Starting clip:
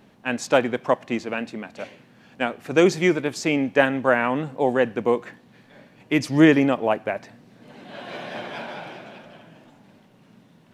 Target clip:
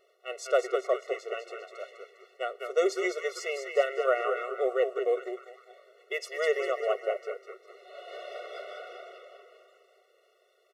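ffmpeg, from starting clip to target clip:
-filter_complex "[0:a]asplit=7[a][b][c][d][e][f][g];[b]adelay=201,afreqshift=-110,volume=-6dB[h];[c]adelay=402,afreqshift=-220,volume=-12.4dB[i];[d]adelay=603,afreqshift=-330,volume=-18.8dB[j];[e]adelay=804,afreqshift=-440,volume=-25.1dB[k];[f]adelay=1005,afreqshift=-550,volume=-31.5dB[l];[g]adelay=1206,afreqshift=-660,volume=-37.9dB[m];[a][h][i][j][k][l][m]amix=inputs=7:normalize=0,afftfilt=real='re*eq(mod(floor(b*sr/1024/370),2),1)':imag='im*eq(mod(floor(b*sr/1024/370),2),1)':win_size=1024:overlap=0.75,volume=-5.5dB"

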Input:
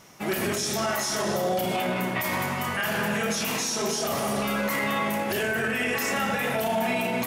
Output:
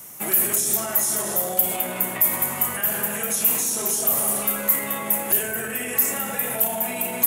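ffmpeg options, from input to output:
-filter_complex "[0:a]acrossover=split=270|620[a][b][c];[a]acompressor=threshold=-41dB:ratio=4[d];[b]acompressor=threshold=-36dB:ratio=4[e];[c]acompressor=threshold=-32dB:ratio=4[f];[d][e][f]amix=inputs=3:normalize=0,aexciter=amount=8.2:drive=6.4:freq=7.4k,volume=1dB"

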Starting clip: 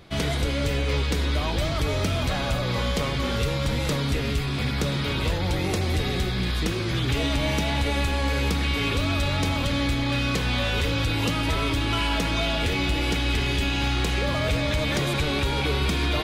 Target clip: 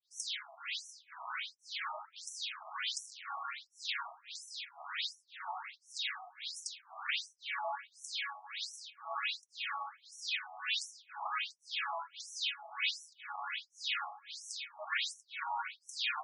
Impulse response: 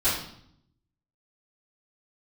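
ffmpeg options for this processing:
-filter_complex "[0:a]acrossover=split=610[a][b];[a]aeval=exprs='val(0)*(1-1/2+1/2*cos(2*PI*1.9*n/s))':c=same[c];[b]aeval=exprs='val(0)*(1-1/2-1/2*cos(2*PI*1.9*n/s))':c=same[d];[c][d]amix=inputs=2:normalize=0,asettb=1/sr,asplit=3[e][f][g];[e]atrim=end=2.164[h];[f]atrim=start=2.16:end=3.23,asetpts=PTS-STARTPTS,afade=t=in:d=0.004:c=qsin,afade=t=out:st=1.066:d=0.004:c=qsin,acrusher=bits=3:mode=log:mix=0:aa=0.000001[i];[g]atrim=start=3.226[j];[h][i]acrossfade=d=0.004:c1=hsin:c2=qsin[k];[k][j]acrossfade=d=0.004:c1=qsin:c2=hsin,asplit=2[l][m];[1:a]atrim=start_sample=2205,lowpass=4.4k[n];[m][n]afir=irnorm=-1:irlink=0,volume=-34dB[o];[l][o]amix=inputs=2:normalize=0,afftfilt=real='re*between(b*sr/1024,890*pow(7900/890,0.5+0.5*sin(2*PI*1.4*pts/sr))/1.41,890*pow(7900/890,0.5+0.5*sin(2*PI*1.4*pts/sr))*1.41)':imag='im*between(b*sr/1024,890*pow(7900/890,0.5+0.5*sin(2*PI*1.4*pts/sr))/1.41,890*pow(7900/890,0.5+0.5*sin(2*PI*1.4*pts/sr))*1.41)':win_size=1024:overlap=0.75"

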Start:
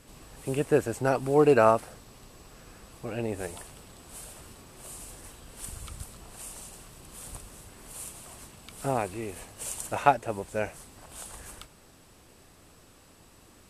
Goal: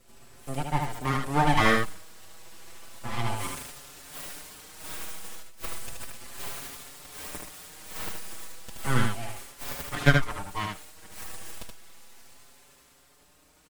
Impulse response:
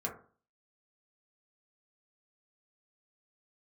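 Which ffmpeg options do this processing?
-filter_complex "[0:a]asplit=3[a][b][c];[a]afade=t=out:st=5.41:d=0.02[d];[b]agate=range=-33dB:threshold=-38dB:ratio=3:detection=peak,afade=t=in:st=5.41:d=0.02,afade=t=out:st=6.12:d=0.02[e];[c]afade=t=in:st=6.12:d=0.02[f];[d][e][f]amix=inputs=3:normalize=0,acrossover=split=410[g][h];[h]dynaudnorm=f=160:g=17:m=11dB[i];[g][i]amix=inputs=2:normalize=0,aeval=exprs='abs(val(0))':c=same,aecho=1:1:76:0.631,asplit=2[j][k];[k]adelay=5.5,afreqshift=0.33[l];[j][l]amix=inputs=2:normalize=1"

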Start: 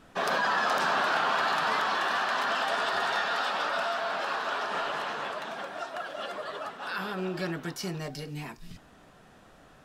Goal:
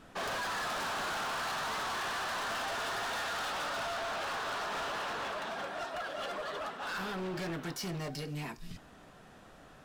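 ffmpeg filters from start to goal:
-af "volume=34.5dB,asoftclip=hard,volume=-34.5dB"

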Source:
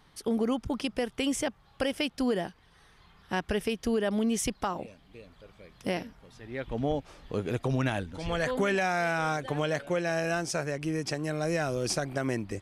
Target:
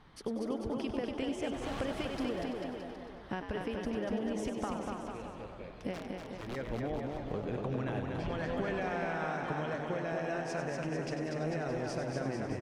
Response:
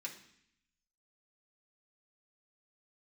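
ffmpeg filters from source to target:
-filter_complex "[0:a]asettb=1/sr,asplit=3[a][b][c];[a]atrim=end=1.434[d];[b]atrim=start=1.43:end=2.37,asetpts=PTS-STARTPTS,afade=t=in:d=0.004:c=qsin,afade=t=out:st=0.936:d=0.004:c=qsin,aeval=exprs='val(0)+0.5*0.0168*sgn(val(0))':c=same[e];[c]atrim=start=2.366[f];[d][e]acrossfade=d=0.004:c1=hsin:c2=qsin[g];[g][f]acrossfade=d=0.004:c1=qsin:c2=hsin,acompressor=threshold=-37dB:ratio=6,asplit=2[h][i];[i]asplit=7[j][k][l][m][n][o][p];[j]adelay=96,afreqshift=86,volume=-9dB[q];[k]adelay=192,afreqshift=172,volume=-13.7dB[r];[l]adelay=288,afreqshift=258,volume=-18.5dB[s];[m]adelay=384,afreqshift=344,volume=-23.2dB[t];[n]adelay=480,afreqshift=430,volume=-27.9dB[u];[o]adelay=576,afreqshift=516,volume=-32.7dB[v];[p]adelay=672,afreqshift=602,volume=-37.4dB[w];[q][r][s][t][u][v][w]amix=inputs=7:normalize=0[x];[h][x]amix=inputs=2:normalize=0,asplit=3[y][z][aa];[y]afade=t=out:st=5.93:d=0.02[ab];[z]aeval=exprs='(mod(59.6*val(0)+1,2)-1)/59.6':c=same,afade=t=in:st=5.93:d=0.02,afade=t=out:st=6.55:d=0.02[ac];[aa]afade=t=in:st=6.55:d=0.02[ad];[ab][ac][ad]amix=inputs=3:normalize=0,aemphasis=mode=reproduction:type=75fm,asplit=2[ae][af];[af]aecho=0:1:240|444|617.4|764.8|890.1:0.631|0.398|0.251|0.158|0.1[ag];[ae][ag]amix=inputs=2:normalize=0,volume=1.5dB"

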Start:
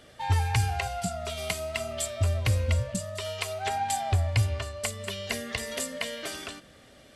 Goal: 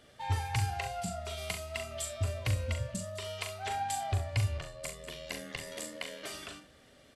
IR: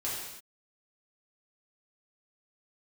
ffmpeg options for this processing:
-filter_complex "[0:a]asettb=1/sr,asplit=3[a][b][c];[a]atrim=end=4.574[d];[b]atrim=start=4.57:end=6.24,asetpts=PTS-STARTPTS,afade=t=in:d=0.004:c=qsin,afade=t=out:st=1.666:d=0.004:c=qsin,aeval=exprs='val(0)*sin(2*PI*41*n/s)':c=same[e];[c]atrim=start=6.236[f];[d][e]acrossfade=d=0.004:c1=hsin:c2=qsin[g];[g][f]acrossfade=d=0.004:c1=qsin:c2=hsin,aecho=1:1:40|67:0.447|0.188,volume=-6.5dB"

